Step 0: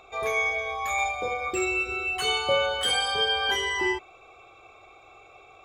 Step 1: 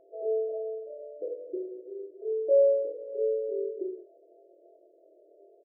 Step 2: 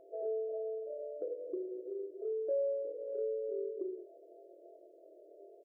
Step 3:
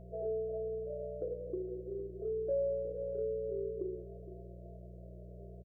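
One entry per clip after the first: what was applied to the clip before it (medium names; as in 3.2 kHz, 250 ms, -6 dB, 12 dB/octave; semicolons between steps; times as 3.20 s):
doubling 20 ms -11 dB; flutter echo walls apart 4.3 m, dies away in 0.39 s; FFT band-pass 300–690 Hz; trim -2.5 dB
compression 2.5:1, threshold -40 dBFS, peak gain reduction 14.5 dB; trim +1.5 dB
mains buzz 60 Hz, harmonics 3, -51 dBFS -2 dB/octave; delay 465 ms -14.5 dB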